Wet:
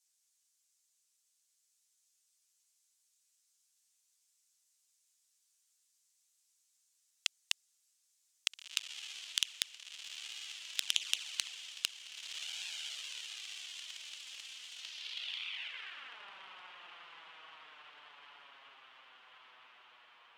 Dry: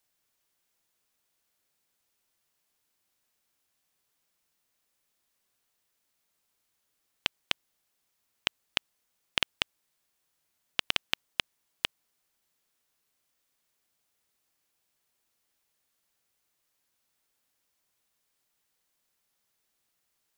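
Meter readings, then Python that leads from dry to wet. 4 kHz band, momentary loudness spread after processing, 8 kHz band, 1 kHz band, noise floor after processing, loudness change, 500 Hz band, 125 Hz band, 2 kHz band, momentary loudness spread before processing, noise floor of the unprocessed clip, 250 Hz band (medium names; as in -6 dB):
-2.0 dB, 21 LU, +8.0 dB, -8.0 dB, -78 dBFS, -6.0 dB, under -15 dB, under -20 dB, -5.5 dB, 5 LU, -78 dBFS, under -15 dB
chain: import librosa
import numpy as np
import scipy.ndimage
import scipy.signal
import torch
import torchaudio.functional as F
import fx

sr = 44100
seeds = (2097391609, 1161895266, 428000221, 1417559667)

y = fx.echo_diffused(x, sr, ms=1726, feedback_pct=59, wet_db=-5)
y = fx.filter_sweep_bandpass(y, sr, from_hz=7100.0, to_hz=1100.0, start_s=14.73, end_s=16.23, q=1.9)
y = fx.env_flanger(y, sr, rest_ms=10.4, full_db=-41.5)
y = y * 10.0 ** (10.5 / 20.0)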